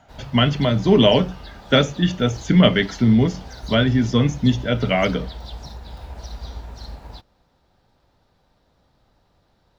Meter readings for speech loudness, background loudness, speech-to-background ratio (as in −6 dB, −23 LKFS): −18.5 LKFS, −38.5 LKFS, 20.0 dB